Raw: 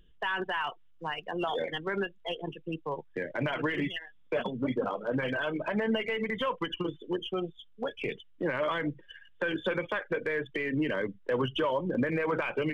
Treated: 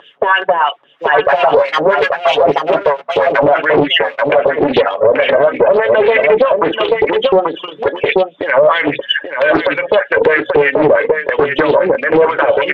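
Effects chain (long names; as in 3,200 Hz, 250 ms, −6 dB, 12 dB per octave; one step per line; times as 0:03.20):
0:01.28–0:03.48: lower of the sound and its delayed copy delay 7.3 ms
Bessel high-pass filter 150 Hz, order 4
parametric band 580 Hz +12 dB 1.1 octaves
mains-hum notches 60/120/180/240 Hz
comb filter 7.1 ms, depth 38%
downward compressor 16 to 1, threshold −31 dBFS, peak gain reduction 18 dB
auto-filter band-pass sine 3.1 Hz 400–2,900 Hz
single-tap delay 834 ms −7.5 dB
boost into a limiter +36 dB
highs frequency-modulated by the lows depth 0.4 ms
level −1 dB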